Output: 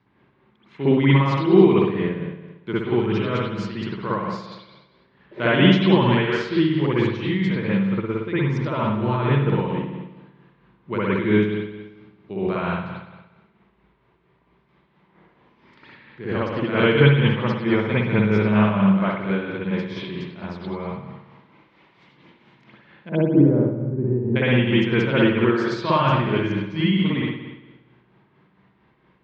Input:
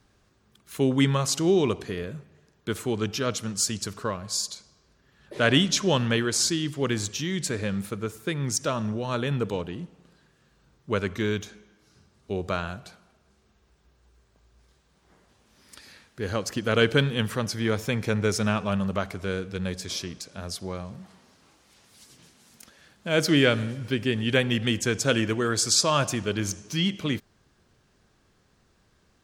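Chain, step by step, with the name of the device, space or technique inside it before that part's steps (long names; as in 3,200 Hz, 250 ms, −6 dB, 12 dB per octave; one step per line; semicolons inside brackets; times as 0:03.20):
0:23.09–0:24.36: Bessel low-pass filter 520 Hz, order 4
combo amplifier with spring reverb and tremolo (spring reverb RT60 1.1 s, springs 57 ms, chirp 45 ms, DRR −9 dB; amplitude tremolo 4.4 Hz, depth 42%; loudspeaker in its box 79–3,800 Hz, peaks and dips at 84 Hz −7 dB, 130 Hz +7 dB, 190 Hz +7 dB, 340 Hz +8 dB, 960 Hz +9 dB, 2,100 Hz +7 dB)
level −5.5 dB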